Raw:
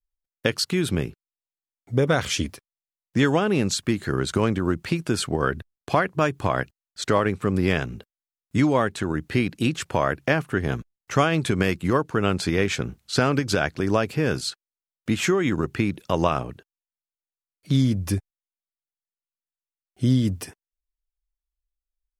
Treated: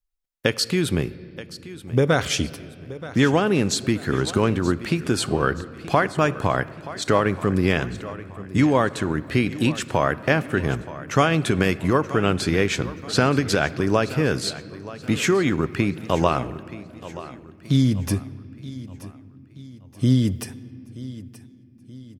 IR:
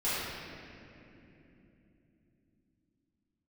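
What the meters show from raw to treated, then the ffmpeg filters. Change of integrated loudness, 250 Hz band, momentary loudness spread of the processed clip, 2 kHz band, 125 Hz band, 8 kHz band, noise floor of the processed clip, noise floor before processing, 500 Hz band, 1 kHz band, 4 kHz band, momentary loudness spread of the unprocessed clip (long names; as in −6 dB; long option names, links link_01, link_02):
+2.0 dB, +2.0 dB, 17 LU, +2.0 dB, +2.0 dB, +2.0 dB, −48 dBFS, below −85 dBFS, +2.0 dB, +2.0 dB, +2.0 dB, 8 LU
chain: -filter_complex "[0:a]aecho=1:1:927|1854|2781|3708:0.158|0.0666|0.028|0.0117,asplit=2[link_01][link_02];[1:a]atrim=start_sample=2205[link_03];[link_02][link_03]afir=irnorm=-1:irlink=0,volume=-26dB[link_04];[link_01][link_04]amix=inputs=2:normalize=0,volume=1.5dB"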